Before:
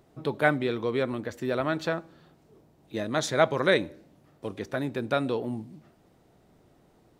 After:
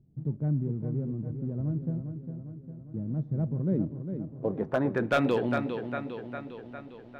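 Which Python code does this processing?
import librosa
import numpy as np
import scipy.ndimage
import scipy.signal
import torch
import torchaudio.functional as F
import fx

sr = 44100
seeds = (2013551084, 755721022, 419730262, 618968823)

p1 = fx.filter_sweep_lowpass(x, sr, from_hz=160.0, to_hz=3300.0, start_s=3.61, end_s=5.43, q=1.7)
p2 = fx.backlash(p1, sr, play_db=-42.0)
p3 = p1 + (p2 * librosa.db_to_amplitude(-10.0))
p4 = fx.echo_feedback(p3, sr, ms=404, feedback_pct=59, wet_db=-8.0)
y = np.clip(p4, -10.0 ** (-17.0 / 20.0), 10.0 ** (-17.0 / 20.0))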